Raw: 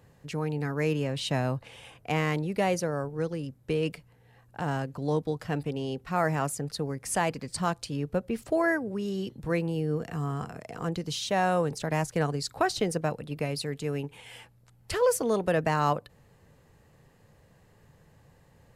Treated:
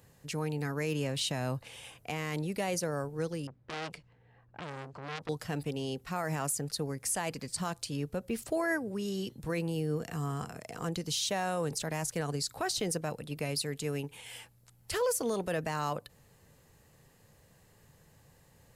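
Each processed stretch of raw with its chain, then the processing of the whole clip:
3.47–5.29 air absorption 59 m + low-pass opened by the level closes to 1700 Hz, open at -26.5 dBFS + core saturation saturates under 2700 Hz
whole clip: high shelf 4000 Hz +11.5 dB; limiter -19 dBFS; gain -3.5 dB

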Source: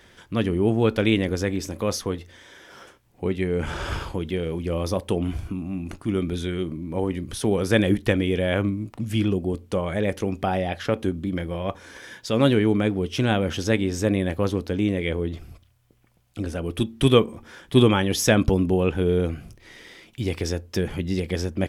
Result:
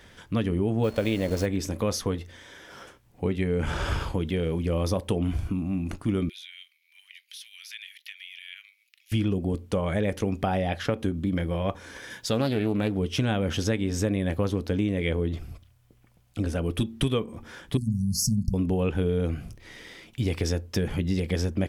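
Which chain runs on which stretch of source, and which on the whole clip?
0.83–1.45 level-crossing sampler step -33.5 dBFS + bell 590 Hz +9.5 dB 0.46 oct + whine 4300 Hz -47 dBFS
6.29–9.12 steep high-pass 2200 Hz + bell 8200 Hz -14.5 dB 0.81 oct + compressor 2.5:1, threshold -40 dBFS
12.1–12.98 high shelf 5900 Hz +6 dB + Doppler distortion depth 0.23 ms
17.77–18.54 brick-wall FIR band-stop 240–4200 Hz + notches 60/120/180/240/300 Hz
whole clip: low shelf 220 Hz +3.5 dB; notch 360 Hz, Q 12; compressor 10:1, threshold -21 dBFS

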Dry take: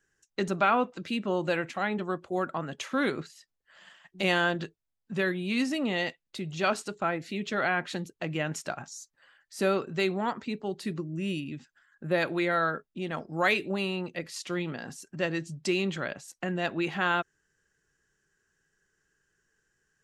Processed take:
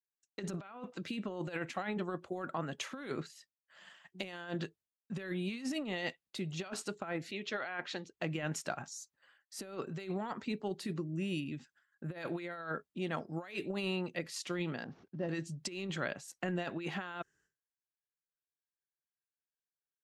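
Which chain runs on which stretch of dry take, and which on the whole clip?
7.31–8.17 LPF 6200 Hz 24 dB/oct + bell 160 Hz -10.5 dB 1.7 oct
14.84–15.29 CVSD 32 kbps + band-pass 200 Hz, Q 0.55
whole clip: expander -56 dBFS; HPF 54 Hz; negative-ratio compressor -31 dBFS, ratio -0.5; gain -6 dB

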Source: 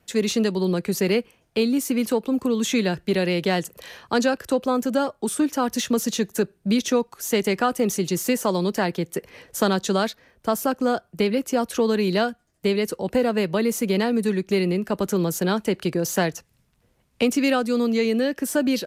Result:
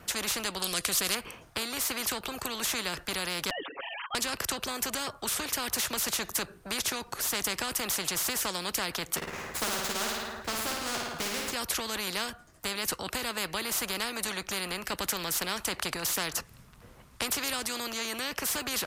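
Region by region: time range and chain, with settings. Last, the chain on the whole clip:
0.62–1.15 Butterworth band-stop 880 Hz, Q 4.2 + band shelf 5800 Hz +15 dB 2.3 oct
3.5–4.15 sine-wave speech + comb 7.2 ms, depth 97%
9.16–11.52 median filter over 15 samples + doubler 13 ms -5 dB + flutter echo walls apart 9.4 m, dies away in 0.69 s
whole clip: bell 1200 Hz +7.5 dB 0.75 oct; spectral compressor 4:1; gain -6 dB

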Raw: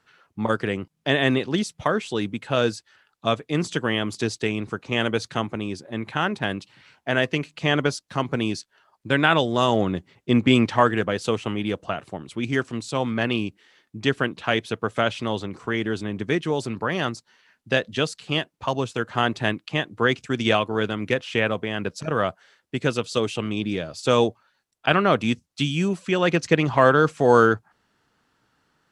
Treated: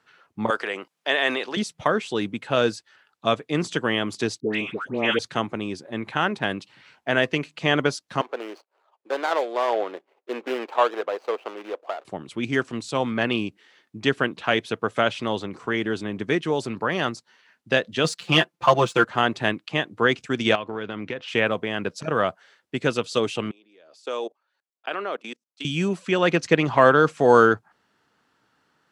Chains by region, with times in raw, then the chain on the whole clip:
0.5–1.57 HPF 550 Hz + transient shaper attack 0 dB, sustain +5 dB
4.4–5.19 HPF 140 Hz + resonant high shelf 4000 Hz -6 dB, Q 1.5 + dispersion highs, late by 0.132 s, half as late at 1100 Hz
8.21–12.05 median filter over 25 samples + HPF 430 Hz 24 dB/oct + high shelf 5400 Hz -10.5 dB
18.04–19.05 dynamic EQ 1200 Hz, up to +5 dB, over -38 dBFS, Q 1.4 + comb 5.8 ms, depth 79% + sample leveller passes 1
20.55–21.28 LPF 4400 Hz + compressor, threshold -26 dBFS
23.51–25.65 level quantiser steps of 24 dB + ladder high-pass 280 Hz, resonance 20%
whole clip: HPF 190 Hz 6 dB/oct; high shelf 5600 Hz -4.5 dB; gain +1.5 dB

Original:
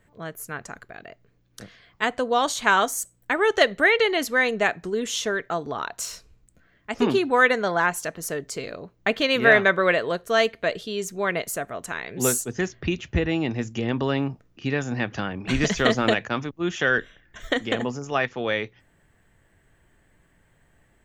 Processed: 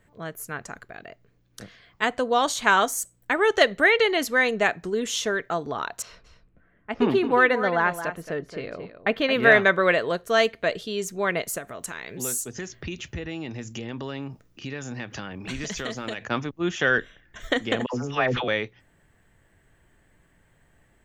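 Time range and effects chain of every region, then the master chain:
6.02–9.43 low-pass opened by the level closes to 1900 Hz, open at -21 dBFS + bell 7400 Hz -13.5 dB 1.4 oct + echo 0.222 s -11 dB
11.58–16.22 compressor 2.5:1, threshold -34 dBFS + high shelf 4200 Hz +8 dB + notch 710 Hz, Q 21
17.86–18.48 air absorption 57 m + dispersion lows, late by 79 ms, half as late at 880 Hz + sustainer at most 33 dB/s
whole clip: dry

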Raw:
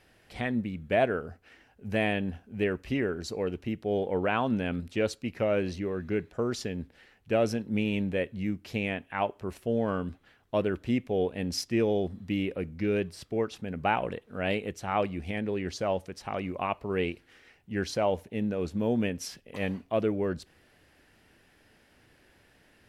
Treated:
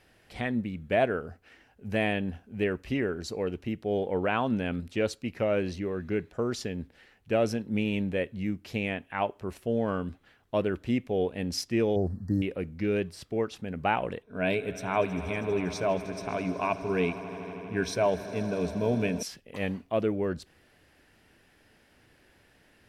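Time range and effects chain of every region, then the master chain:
11.96–12.42 brick-wall FIR band-stop 1900–4100 Hz + bell 92 Hz +8.5 dB 1.5 oct
14.22–19.23 ripple EQ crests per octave 1.6, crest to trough 10 dB + swelling echo 80 ms, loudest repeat 5, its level -18 dB + mismatched tape noise reduction decoder only
whole clip: dry

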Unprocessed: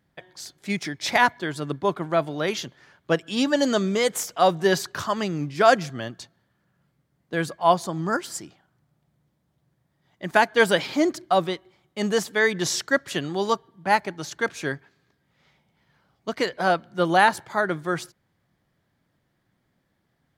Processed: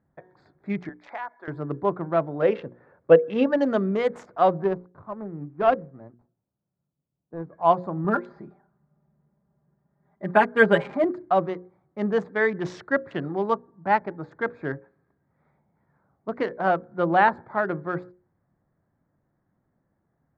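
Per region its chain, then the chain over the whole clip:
0.89–1.48 HPF 790 Hz + bell 3500 Hz -4 dB 3 oct + compressor 2.5:1, threshold -30 dBFS
2.42–3.46 LPF 3900 Hz + small resonant body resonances 500/2700 Hz, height 13 dB, ringing for 30 ms
4.64–7.53 median filter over 25 samples + air absorption 120 m + upward expander, over -39 dBFS
8.04–11.04 comb 5 ms, depth 84% + careless resampling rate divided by 4×, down filtered, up hold
whole clip: Wiener smoothing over 15 samples; LPF 1800 Hz 12 dB/oct; notches 60/120/180/240/300/360/420/480/540 Hz

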